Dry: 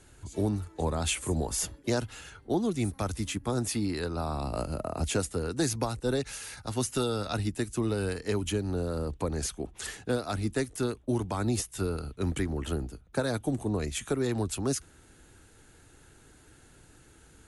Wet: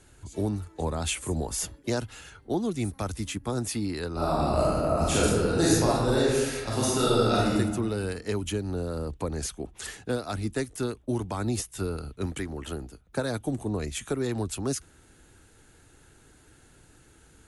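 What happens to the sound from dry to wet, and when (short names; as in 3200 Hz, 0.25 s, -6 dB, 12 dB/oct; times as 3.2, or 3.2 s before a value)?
4.12–7.56 reverb throw, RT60 1.3 s, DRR -7 dB
12.26–13.07 low shelf 320 Hz -5.5 dB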